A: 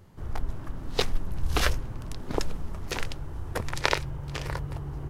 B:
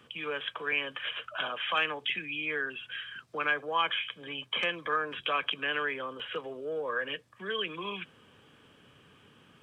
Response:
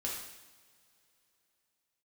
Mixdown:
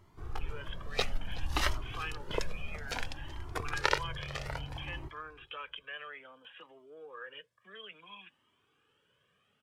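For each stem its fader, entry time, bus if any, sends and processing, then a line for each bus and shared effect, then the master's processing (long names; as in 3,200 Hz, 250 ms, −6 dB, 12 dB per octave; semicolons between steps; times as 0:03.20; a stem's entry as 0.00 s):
+1.5 dB, 0.00 s, no send, echo send −18.5 dB, high-shelf EQ 6,300 Hz −6.5 dB
−8.5 dB, 0.25 s, no send, no echo send, no processing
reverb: not used
echo: repeating echo 375 ms, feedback 24%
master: low-shelf EQ 250 Hz −8 dB; flanger whose copies keep moving one way rising 0.59 Hz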